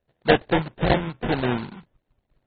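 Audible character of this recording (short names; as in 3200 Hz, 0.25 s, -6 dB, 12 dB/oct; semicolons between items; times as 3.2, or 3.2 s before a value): random-step tremolo; aliases and images of a low sample rate 1200 Hz, jitter 20%; AAC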